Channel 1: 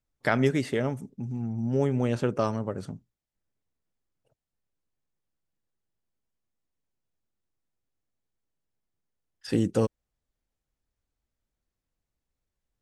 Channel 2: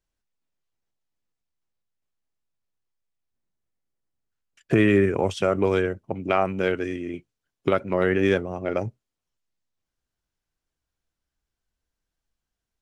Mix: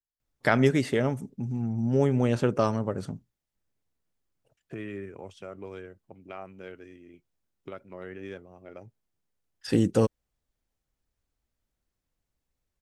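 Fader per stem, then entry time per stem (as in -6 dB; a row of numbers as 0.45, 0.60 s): +2.0, -19.5 dB; 0.20, 0.00 s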